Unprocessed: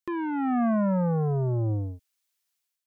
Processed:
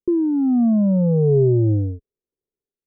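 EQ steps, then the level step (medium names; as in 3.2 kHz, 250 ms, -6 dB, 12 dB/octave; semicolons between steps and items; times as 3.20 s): resonant low-pass 410 Hz, resonance Q 4.9; tilt EQ -2.5 dB/octave; 0.0 dB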